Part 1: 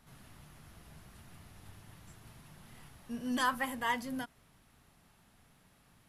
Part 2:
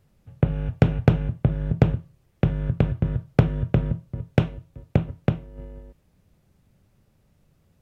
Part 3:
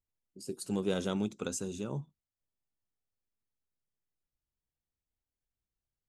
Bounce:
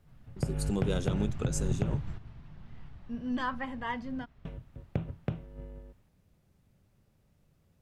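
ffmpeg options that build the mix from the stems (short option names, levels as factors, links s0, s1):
-filter_complex "[0:a]lowpass=4900,aemphasis=mode=reproduction:type=bsi,dynaudnorm=f=130:g=11:m=2.37,volume=0.891[s0];[1:a]volume=0.531,asplit=3[s1][s2][s3];[s1]atrim=end=2.15,asetpts=PTS-STARTPTS,afade=t=out:st=2.146:d=0.004:c=hsin[s4];[s2]atrim=start=2.15:end=4.45,asetpts=PTS-STARTPTS,volume=0[s5];[s3]atrim=start=4.45,asetpts=PTS-STARTPTS,afade=t=in:d=0.004:c=hsin[s6];[s4][s5][s6]concat=n=3:v=0:a=1[s7];[2:a]volume=1.19,asplit=2[s8][s9];[s9]apad=whole_len=268281[s10];[s0][s10]sidechaingate=range=0.355:threshold=0.00158:ratio=16:detection=peak[s11];[s11][s7][s8]amix=inputs=3:normalize=0,alimiter=limit=0.112:level=0:latency=1:release=128"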